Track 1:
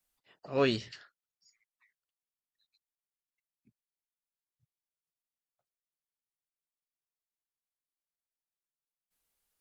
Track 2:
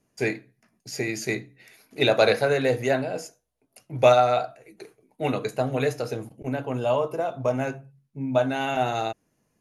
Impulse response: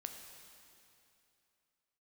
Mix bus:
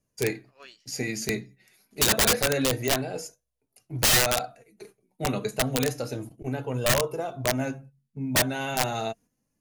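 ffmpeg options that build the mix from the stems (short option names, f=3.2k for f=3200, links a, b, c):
-filter_complex "[0:a]highpass=880,bandreject=f=3.8k:w=9.6,volume=-15dB[a];[1:a]flanger=delay=1.7:depth=3.8:regen=43:speed=0.29:shape=triangular,aeval=exprs='(mod(8.41*val(0)+1,2)-1)/8.41':c=same,volume=0.5dB[b];[a][b]amix=inputs=2:normalize=0,agate=range=-7dB:threshold=-50dB:ratio=16:detection=peak,bass=f=250:g=7,treble=f=4k:g=6"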